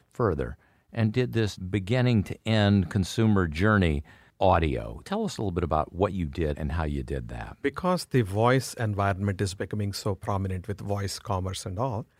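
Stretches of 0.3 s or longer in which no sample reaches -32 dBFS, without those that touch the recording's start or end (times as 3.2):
0.52–0.95
4–4.41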